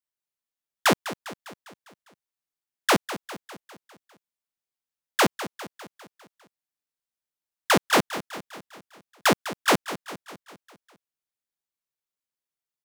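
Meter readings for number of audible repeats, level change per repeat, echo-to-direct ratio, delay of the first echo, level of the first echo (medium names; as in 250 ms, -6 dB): 5, -5.0 dB, -12.0 dB, 201 ms, -13.5 dB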